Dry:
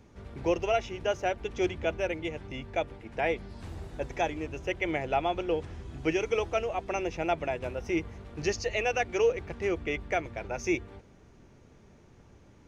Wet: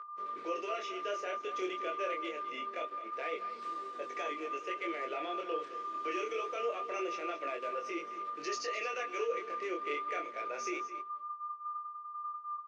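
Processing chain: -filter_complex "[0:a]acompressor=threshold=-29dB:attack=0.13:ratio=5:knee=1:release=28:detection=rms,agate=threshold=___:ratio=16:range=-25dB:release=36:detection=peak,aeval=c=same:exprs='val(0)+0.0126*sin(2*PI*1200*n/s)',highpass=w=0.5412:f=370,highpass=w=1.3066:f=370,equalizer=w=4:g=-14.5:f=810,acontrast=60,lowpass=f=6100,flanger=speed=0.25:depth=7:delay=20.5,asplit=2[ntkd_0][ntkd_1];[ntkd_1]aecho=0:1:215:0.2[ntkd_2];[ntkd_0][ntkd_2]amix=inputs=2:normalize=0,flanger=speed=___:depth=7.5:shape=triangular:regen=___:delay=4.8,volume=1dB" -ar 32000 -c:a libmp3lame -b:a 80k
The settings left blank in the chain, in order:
-50dB, 0.56, -59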